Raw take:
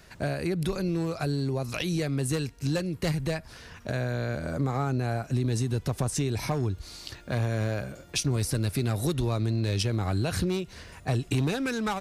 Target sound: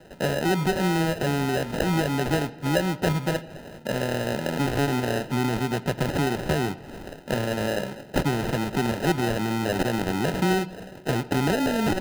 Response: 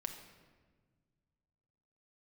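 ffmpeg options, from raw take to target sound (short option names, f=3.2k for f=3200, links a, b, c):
-filter_complex "[0:a]highpass=f=150:w=0.5412,highpass=f=150:w=1.3066,acrusher=samples=39:mix=1:aa=0.000001,asplit=2[a][b];[1:a]atrim=start_sample=2205,lowpass=4.9k,lowshelf=f=210:g=-8.5[c];[b][c]afir=irnorm=-1:irlink=0,volume=-4.5dB[d];[a][d]amix=inputs=2:normalize=0,volume=3.5dB"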